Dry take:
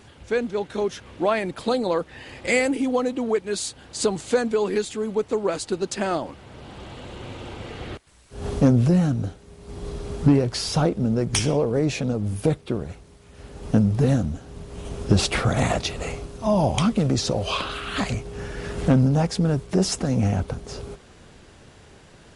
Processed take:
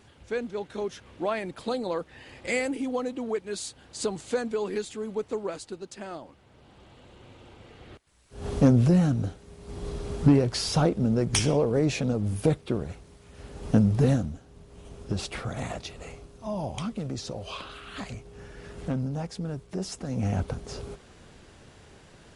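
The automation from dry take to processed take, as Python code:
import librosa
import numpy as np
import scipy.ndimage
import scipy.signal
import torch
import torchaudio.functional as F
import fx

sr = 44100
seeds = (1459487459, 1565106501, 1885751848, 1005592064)

y = fx.gain(x, sr, db=fx.line((5.35, -7.0), (5.85, -14.0), (7.84, -14.0), (8.62, -2.0), (14.08, -2.0), (14.49, -12.0), (19.98, -12.0), (20.4, -3.0)))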